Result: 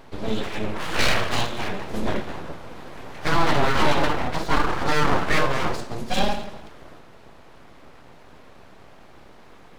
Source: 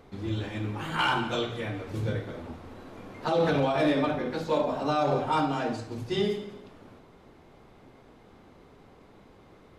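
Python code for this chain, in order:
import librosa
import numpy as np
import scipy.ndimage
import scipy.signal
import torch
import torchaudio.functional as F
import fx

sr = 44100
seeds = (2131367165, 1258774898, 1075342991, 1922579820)

y = np.abs(x)
y = y * 10.0 ** (8.5 / 20.0)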